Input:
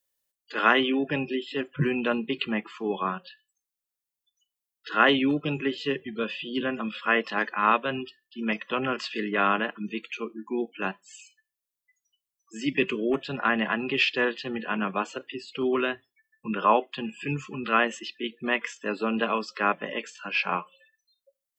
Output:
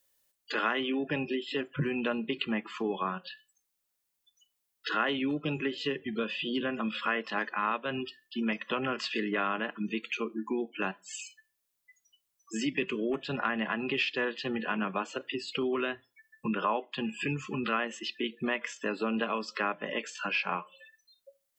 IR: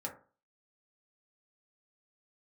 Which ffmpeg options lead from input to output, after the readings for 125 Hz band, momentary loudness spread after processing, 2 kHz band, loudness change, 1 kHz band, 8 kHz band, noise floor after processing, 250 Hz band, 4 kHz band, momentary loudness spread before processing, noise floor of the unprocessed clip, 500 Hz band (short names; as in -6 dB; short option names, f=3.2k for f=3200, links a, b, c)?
-4.0 dB, 6 LU, -5.5 dB, -5.5 dB, -7.0 dB, n/a, -81 dBFS, -4.0 dB, -4.0 dB, 11 LU, under -85 dBFS, -5.0 dB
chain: -filter_complex "[0:a]acompressor=threshold=-39dB:ratio=3,asplit=2[a][b];[1:a]atrim=start_sample=2205,asetrate=48510,aresample=44100[c];[b][c]afir=irnorm=-1:irlink=0,volume=-19dB[d];[a][d]amix=inputs=2:normalize=0,volume=6.5dB"